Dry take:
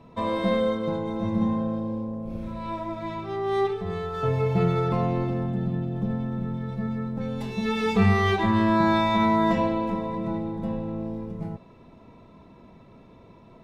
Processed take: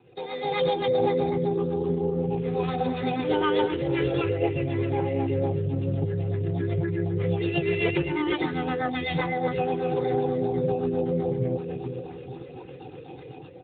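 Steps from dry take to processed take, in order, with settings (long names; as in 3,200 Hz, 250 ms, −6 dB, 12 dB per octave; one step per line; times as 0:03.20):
rotating-speaker cabinet horn 8 Hz
gain on a spectral selection 0:08.89–0:09.16, 330–2,000 Hz −13 dB
high-shelf EQ 2,200 Hz +6 dB
downward compressor 16 to 1, threshold −33 dBFS, peak gain reduction 18 dB
comb filter 1.9 ms, depth 86%
automatic gain control gain up to 13 dB
on a send: bucket-brigade delay 443 ms, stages 2,048, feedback 45%, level −7 dB
on the sum: auto-filter notch saw up 3.8 Hz 700–1,800 Hz
parametric band 96 Hz −14 dB 0.79 octaves
hum removal 138.2 Hz, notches 2
phase-vocoder pitch shift with formants kept −4.5 semitones
AMR narrowband 12.2 kbit/s 8,000 Hz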